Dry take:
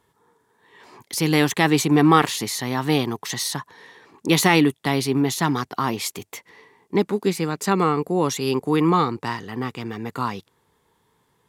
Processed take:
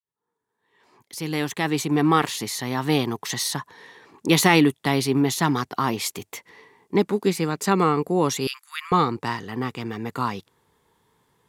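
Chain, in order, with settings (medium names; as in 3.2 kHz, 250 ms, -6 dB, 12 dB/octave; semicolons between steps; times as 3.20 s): fade-in on the opening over 3.30 s; 8.47–8.92 s: steep high-pass 1.3 kHz 48 dB/octave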